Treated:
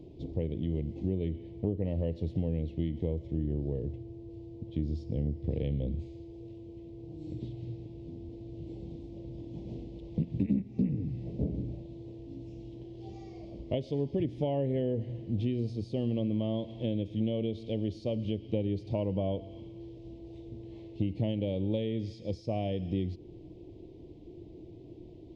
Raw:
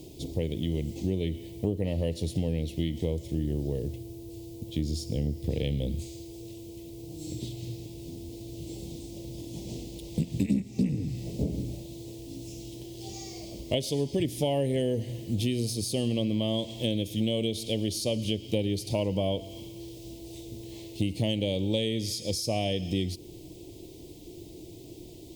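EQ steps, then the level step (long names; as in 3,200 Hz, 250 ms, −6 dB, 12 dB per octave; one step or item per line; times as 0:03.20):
head-to-tape spacing loss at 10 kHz 42 dB
−1.5 dB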